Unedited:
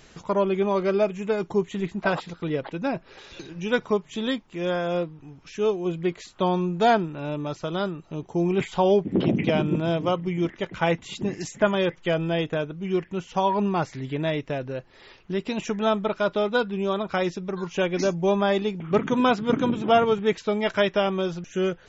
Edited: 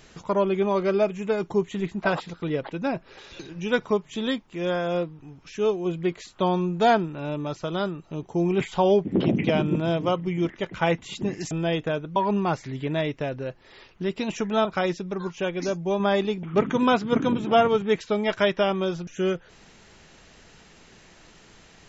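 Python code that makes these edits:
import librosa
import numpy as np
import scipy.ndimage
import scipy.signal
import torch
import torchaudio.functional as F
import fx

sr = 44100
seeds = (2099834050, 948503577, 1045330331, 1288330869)

y = fx.edit(x, sr, fx.cut(start_s=11.51, length_s=0.66),
    fx.cut(start_s=12.82, length_s=0.63),
    fx.cut(start_s=15.94, length_s=1.08),
    fx.clip_gain(start_s=17.66, length_s=0.71, db=-3.5), tone=tone)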